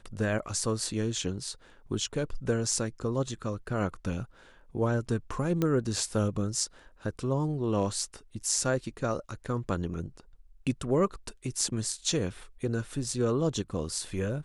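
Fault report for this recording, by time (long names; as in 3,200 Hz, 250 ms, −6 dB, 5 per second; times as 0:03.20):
0:05.62: click −15 dBFS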